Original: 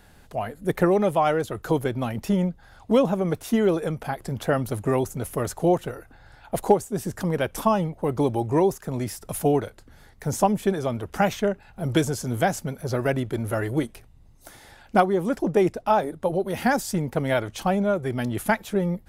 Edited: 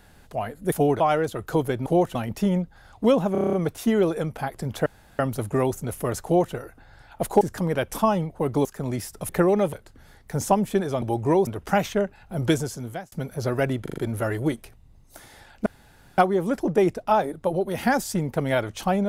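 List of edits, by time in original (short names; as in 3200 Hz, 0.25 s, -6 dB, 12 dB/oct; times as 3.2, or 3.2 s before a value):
0.72–1.16 swap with 9.37–9.65
3.19 stutter 0.03 s, 8 plays
4.52 insert room tone 0.33 s
5.58–5.87 copy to 2.02
6.74–7.04 cut
8.28–8.73 move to 10.94
12–12.59 fade out
13.29 stutter 0.04 s, 5 plays
14.97 insert room tone 0.52 s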